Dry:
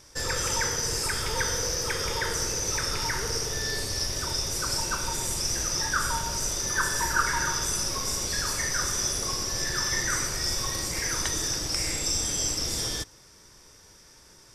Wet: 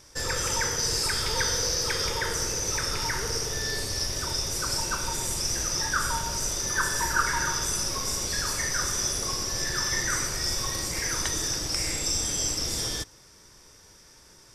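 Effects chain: 0.79–2.1 bell 4300 Hz +6.5 dB 0.58 oct

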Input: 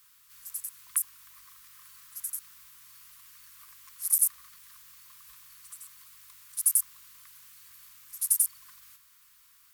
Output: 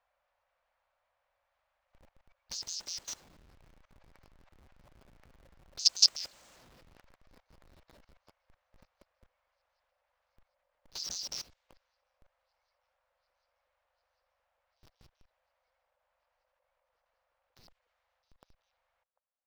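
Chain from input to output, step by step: whole clip reversed; Doppler pass-by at 2.6, 7 m/s, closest 7.1 m; low-pass opened by the level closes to 2900 Hz, open at -31 dBFS; on a send: band-limited delay 0.373 s, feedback 71%, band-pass 1300 Hz, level -13.5 dB; on the sum: speed mistake 15 ips tape played at 7.5 ips; notch 400 Hz, Q 12; in parallel at -7.5 dB: Schmitt trigger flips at -56.5 dBFS; on the sum: level quantiser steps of 21 dB; gain +3 dB

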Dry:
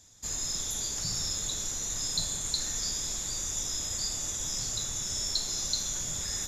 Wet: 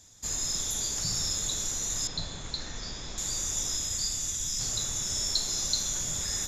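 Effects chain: 2.07–3.18 Gaussian blur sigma 1.9 samples; 3.76–4.59 bell 640 Hz -3 dB -> -11 dB 2.6 oct; gain +2 dB

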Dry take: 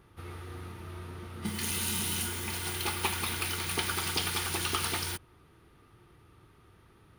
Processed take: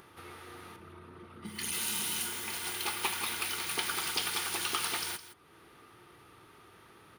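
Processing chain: 0.76–1.73 formant sharpening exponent 1.5; HPF 460 Hz 6 dB/oct; in parallel at +1 dB: upward compressor, threshold -40 dBFS; on the sum: echo 0.163 s -14 dB; gain -7.5 dB

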